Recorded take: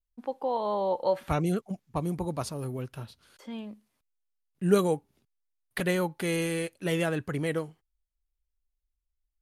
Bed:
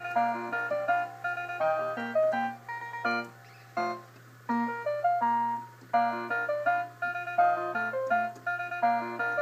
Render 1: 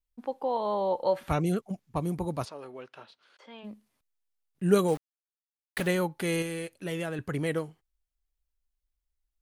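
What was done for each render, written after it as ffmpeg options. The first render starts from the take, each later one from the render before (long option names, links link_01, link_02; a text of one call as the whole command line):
ffmpeg -i in.wav -filter_complex "[0:a]asplit=3[link_01][link_02][link_03];[link_01]afade=type=out:start_time=2.44:duration=0.02[link_04];[link_02]highpass=500,lowpass=3900,afade=type=in:start_time=2.44:duration=0.02,afade=type=out:start_time=3.63:duration=0.02[link_05];[link_03]afade=type=in:start_time=3.63:duration=0.02[link_06];[link_04][link_05][link_06]amix=inputs=3:normalize=0,asettb=1/sr,asplit=3[link_07][link_08][link_09];[link_07]atrim=end=4.884[link_10];[link_08]atrim=start=4.88:end=5.88,asetpts=PTS-STARTPTS,afade=type=in:duration=0.004:curve=qsin,afade=type=out:start_time=0.996:duration=0.004:curve=qsin,aeval=exprs='val(0)*gte(abs(val(0)),0.0126)':channel_layout=same[link_11];[link_09]atrim=start=5.876[link_12];[link_10][link_11]acrossfade=duration=0.004:curve1=hsin:curve2=qsin[link_13];[link_13][link_12]acrossfade=duration=0.004:curve1=qsin:curve2=hsin,asettb=1/sr,asplit=3[link_14][link_15][link_16];[link_14]atrim=end=6.424[link_17];[link_15]atrim=start=6.42:end=7.19,asetpts=PTS-STARTPTS,afade=type=in:duration=0.004:curve=qsin,afade=type=out:start_time=0.766:duration=0.004:curve=qsin,acompressor=threshold=-39dB:ratio=1.5:attack=3.2:release=140:knee=1:detection=peak[link_18];[link_16]atrim=start=7.186[link_19];[link_17][link_18]acrossfade=duration=0.004:curve1=hsin:curve2=qsin[link_20];[link_20][link_19]acrossfade=duration=0.004:curve1=qsin:curve2=hsin" out.wav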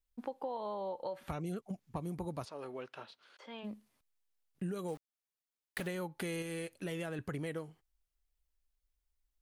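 ffmpeg -i in.wav -af "alimiter=limit=-19.5dB:level=0:latency=1:release=328,acompressor=threshold=-37dB:ratio=5" out.wav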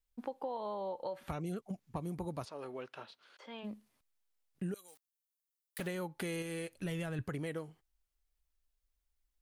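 ffmpeg -i in.wav -filter_complex "[0:a]asettb=1/sr,asplit=3[link_01][link_02][link_03];[link_01]atrim=end=4.744[link_04];[link_02]atrim=start=4.74:end=5.79,asetpts=PTS-STARTPTS,afade=type=in:duration=0.004:curve=qsin,afade=type=out:start_time=1.046:duration=0.004:curve=qsin,aderivative[link_05];[link_03]atrim=start=5.786[link_06];[link_04][link_05]acrossfade=duration=0.004:curve1=hsin:curve2=qsin[link_07];[link_07][link_06]acrossfade=duration=0.004:curve1=qsin:curve2=hsin,asplit=3[link_08][link_09][link_10];[link_08]afade=type=out:start_time=6.76:duration=0.02[link_11];[link_09]asubboost=boost=3.5:cutoff=160,afade=type=in:start_time=6.76:duration=0.02,afade=type=out:start_time=7.23:duration=0.02[link_12];[link_10]afade=type=in:start_time=7.23:duration=0.02[link_13];[link_11][link_12][link_13]amix=inputs=3:normalize=0" out.wav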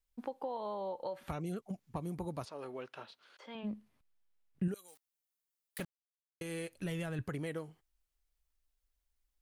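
ffmpeg -i in.wav -filter_complex "[0:a]asettb=1/sr,asplit=3[link_01][link_02][link_03];[link_01]atrim=end=3.554[link_04];[link_02]atrim=start=3.55:end=4.68,asetpts=PTS-STARTPTS,afade=type=in:duration=0.004:curve=qsin,afade=type=out:start_time=1.126:duration=0.004:curve=qsin,bass=frequency=250:gain=7,treble=frequency=4000:gain=-8[link_05];[link_03]atrim=start=4.676[link_06];[link_04][link_05]acrossfade=duration=0.004:curve1=hsin:curve2=qsin[link_07];[link_07][link_06]acrossfade=duration=0.004:curve1=qsin:curve2=hsin,asplit=3[link_08][link_09][link_10];[link_08]atrim=end=5.85,asetpts=PTS-STARTPTS,afade=type=out:start_time=5.846:duration=0.004:curve=hsin[link_11];[link_09]atrim=start=5.85:end=6.41,asetpts=PTS-STARTPTS,volume=0[link_12];[link_10]atrim=start=6.41,asetpts=PTS-STARTPTS,afade=type=in:duration=0.004:curve=hsin[link_13];[link_11][link_12][link_13]concat=n=3:v=0:a=1" out.wav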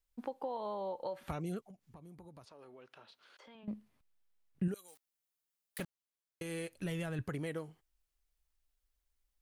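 ffmpeg -i in.wav -filter_complex "[0:a]asettb=1/sr,asplit=3[link_01][link_02][link_03];[link_01]atrim=end=1.664[link_04];[link_02]atrim=start=1.66:end=3.68,asetpts=PTS-STARTPTS,afade=type=in:duration=0.004:curve=qsin,afade=type=out:start_time=2.016:duration=0.004:curve=qsin,acompressor=threshold=-56dB:ratio=3:attack=3.2:release=140:knee=1:detection=peak[link_05];[link_03]atrim=start=3.676[link_06];[link_04][link_05]acrossfade=duration=0.004:curve1=hsin:curve2=qsin[link_07];[link_07][link_06]acrossfade=duration=0.004:curve1=qsin:curve2=hsin" out.wav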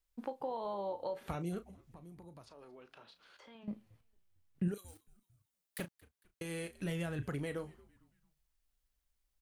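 ffmpeg -i in.wav -filter_complex "[0:a]asplit=2[link_01][link_02];[link_02]adelay=35,volume=-11.5dB[link_03];[link_01][link_03]amix=inputs=2:normalize=0,asplit=4[link_04][link_05][link_06][link_07];[link_05]adelay=226,afreqshift=-100,volume=-23dB[link_08];[link_06]adelay=452,afreqshift=-200,volume=-30.1dB[link_09];[link_07]adelay=678,afreqshift=-300,volume=-37.3dB[link_10];[link_04][link_08][link_09][link_10]amix=inputs=4:normalize=0" out.wav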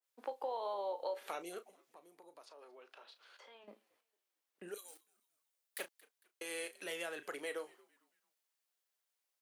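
ffmpeg -i in.wav -af "highpass=frequency=400:width=0.5412,highpass=frequency=400:width=1.3066,adynamicequalizer=threshold=0.00126:dfrequency=1800:dqfactor=0.7:tfrequency=1800:tqfactor=0.7:attack=5:release=100:ratio=0.375:range=2:mode=boostabove:tftype=highshelf" out.wav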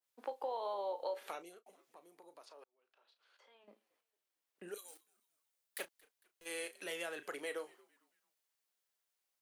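ffmpeg -i in.wav -filter_complex "[0:a]asplit=3[link_01][link_02][link_03];[link_01]afade=type=out:start_time=5.84:duration=0.02[link_04];[link_02]aeval=exprs='(tanh(1000*val(0)+0.1)-tanh(0.1))/1000':channel_layout=same,afade=type=in:start_time=5.84:duration=0.02,afade=type=out:start_time=6.45:duration=0.02[link_05];[link_03]afade=type=in:start_time=6.45:duration=0.02[link_06];[link_04][link_05][link_06]amix=inputs=3:normalize=0,asplit=3[link_07][link_08][link_09];[link_07]atrim=end=1.66,asetpts=PTS-STARTPTS,afade=type=out:start_time=1.23:duration=0.43[link_10];[link_08]atrim=start=1.66:end=2.64,asetpts=PTS-STARTPTS,afade=type=in:duration=0.004:curve=hsin,afade=type=out:start_time=0.976:duration=0.004:curve=hsin[link_11];[link_09]atrim=start=2.64,asetpts=PTS-STARTPTS,afade=type=in:duration=2.12[link_12];[link_10][link_11][link_12]concat=n=3:v=0:a=1" out.wav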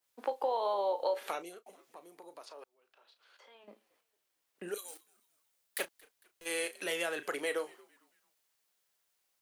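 ffmpeg -i in.wav -af "volume=7.5dB" out.wav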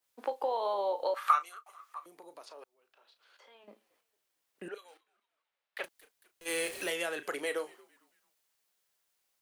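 ffmpeg -i in.wav -filter_complex "[0:a]asettb=1/sr,asplit=3[link_01][link_02][link_03];[link_01]atrim=end=1.144[link_04];[link_02]atrim=start=1.14:end=2.06,asetpts=PTS-STARTPTS,afade=type=in:duration=0.004:curve=qsin,afade=type=out:start_time=0.916:duration=0.004:curve=qsin,highpass=frequency=1200:width_type=q:width=14[link_05];[link_03]atrim=start=2.056[link_06];[link_04][link_05]acrossfade=duration=0.004:curve1=hsin:curve2=qsin[link_07];[link_07][link_06]acrossfade=duration=0.004:curve1=qsin:curve2=hsin,asettb=1/sr,asplit=3[link_08][link_09][link_10];[link_08]atrim=end=4.684[link_11];[link_09]atrim=start=4.68:end=5.84,asetpts=PTS-STARTPTS,afade=type=in:duration=0.004:curve=qsin,afade=type=out:start_time=1.156:duration=0.004:curve=qsin,acrossover=split=440 3500:gain=0.224 1 0.0631[link_12][link_13][link_14];[link_12][link_13][link_14]amix=inputs=3:normalize=0[link_15];[link_10]atrim=start=5.836[link_16];[link_11][link_15]acrossfade=duration=0.004:curve1=hsin:curve2=qsin[link_17];[link_17][link_16]acrossfade=duration=0.004:curve1=qsin:curve2=hsin,asettb=1/sr,asplit=3[link_18][link_19][link_20];[link_18]atrim=end=6.484[link_21];[link_19]atrim=start=6.48:end=6.9,asetpts=PTS-STARTPTS,afade=type=in:duration=0.004:curve=qsin,afade=type=out:start_time=0.416:duration=0.004:curve=qsin,aeval=exprs='val(0)+0.5*0.01*sgn(val(0))':channel_layout=same[link_22];[link_20]atrim=start=6.896[link_23];[link_21][link_22]acrossfade=duration=0.004:curve1=hsin:curve2=qsin[link_24];[link_24][link_23]acrossfade=duration=0.004:curve1=qsin:curve2=hsin" out.wav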